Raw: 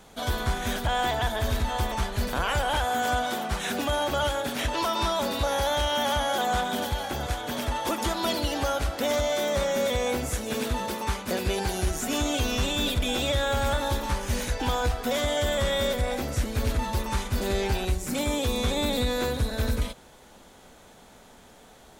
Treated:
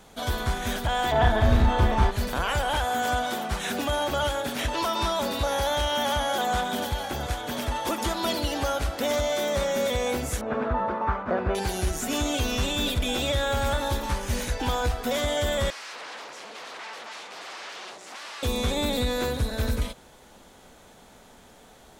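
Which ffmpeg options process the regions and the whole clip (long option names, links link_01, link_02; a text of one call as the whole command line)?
ffmpeg -i in.wav -filter_complex "[0:a]asettb=1/sr,asplit=3[link_01][link_02][link_03];[link_01]atrim=end=1.124[link_04];[link_02]atrim=start=1.12:end=2.11,asetpts=PTS-STARTPTS,afade=type=in:duration=0.004:curve=qsin,afade=type=out:start_time=0.986:duration=0.004:curve=qsin,lowpass=frequency=1400:poles=1,acontrast=53,asplit=2[link_05][link_06];[link_06]adelay=33,volume=-3dB[link_07];[link_05][link_07]amix=inputs=2:normalize=0,atrim=end_sample=43659[link_08];[link_03]atrim=start=2.106[link_09];[link_04][link_08]acrossfade=duration=0.004:curve1=hsin:curve2=qsin[link_10];[link_10][link_09]acrossfade=duration=0.004:curve1=qsin:curve2=hsin,asettb=1/sr,asplit=3[link_11][link_12][link_13];[link_11]atrim=end=10.414[link_14];[link_12]atrim=start=10.41:end=11.55,asetpts=PTS-STARTPTS,afade=type=in:duration=0.004:curve=qsin,afade=type=out:start_time=1.136:duration=0.004:curve=qsin,lowpass=frequency=1300:width_type=q:width=2.4,equalizer=frequency=660:width=3.7:gain=6[link_15];[link_13]atrim=start=11.546[link_16];[link_14][link_15]acrossfade=duration=0.004:curve1=hsin:curve2=qsin[link_17];[link_17][link_16]acrossfade=duration=0.004:curve1=qsin:curve2=hsin,asettb=1/sr,asplit=3[link_18][link_19][link_20];[link_18]atrim=end=15.704[link_21];[link_19]atrim=start=15.7:end=18.43,asetpts=PTS-STARTPTS,afade=type=in:duration=0.004:curve=qsin,afade=type=out:start_time=2.726:duration=0.004:curve=qsin,aeval=exprs='0.0237*(abs(mod(val(0)/0.0237+3,4)-2)-1)':channel_layout=same,highpass=520,lowpass=5300[link_22];[link_20]atrim=start=18.426[link_23];[link_21][link_22]acrossfade=duration=0.004:curve1=hsin:curve2=qsin[link_24];[link_24][link_23]acrossfade=duration=0.004:curve1=qsin:curve2=hsin" out.wav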